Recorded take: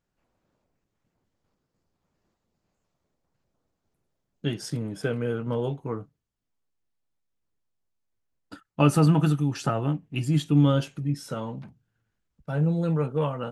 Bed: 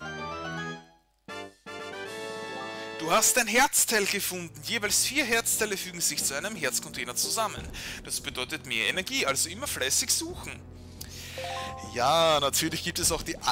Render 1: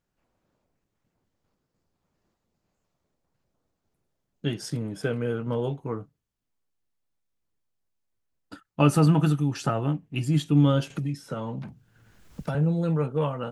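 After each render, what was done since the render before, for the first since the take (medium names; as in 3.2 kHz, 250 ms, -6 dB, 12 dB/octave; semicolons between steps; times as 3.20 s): 10.90–12.55 s: three bands compressed up and down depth 100%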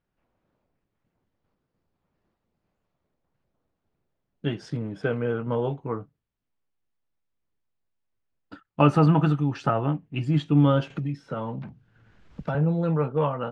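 low-pass 3.3 kHz 12 dB/octave; dynamic bell 940 Hz, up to +5 dB, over -37 dBFS, Q 0.78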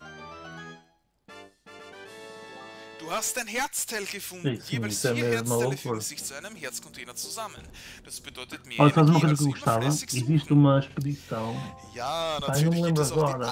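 add bed -7 dB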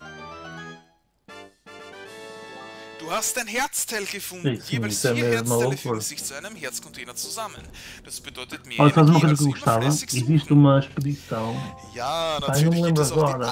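trim +4 dB; peak limiter -3 dBFS, peak gain reduction 2.5 dB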